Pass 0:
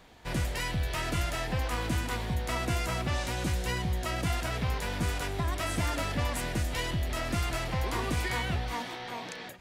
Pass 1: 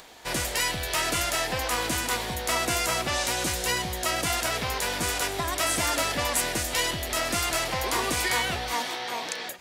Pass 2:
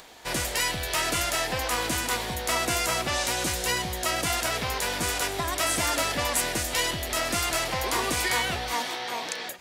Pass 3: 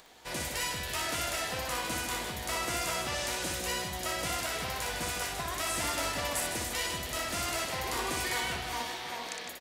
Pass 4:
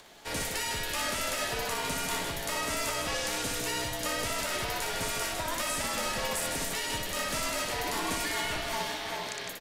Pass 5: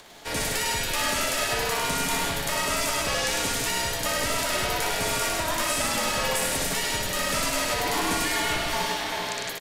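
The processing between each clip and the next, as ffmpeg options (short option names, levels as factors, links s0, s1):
-af "bass=f=250:g=-13,treble=f=4000:g=7,acompressor=mode=upward:threshold=0.00224:ratio=2.5,volume=2.11"
-af anull
-af "aecho=1:1:60|156|309.6|555.4|948.6:0.631|0.398|0.251|0.158|0.1,volume=0.376"
-af "alimiter=level_in=1.06:limit=0.0631:level=0:latency=1:release=82,volume=0.944,afreqshift=-62,volume=1.41"
-af "aecho=1:1:103:0.668,volume=1.68"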